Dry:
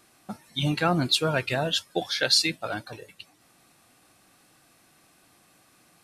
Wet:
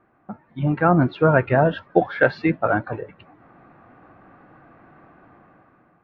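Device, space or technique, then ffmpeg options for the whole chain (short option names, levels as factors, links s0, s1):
action camera in a waterproof case: -af "lowpass=f=1600:w=0.5412,lowpass=f=1600:w=1.3066,dynaudnorm=f=360:g=5:m=3.98,volume=1.26" -ar 16000 -c:a aac -b:a 48k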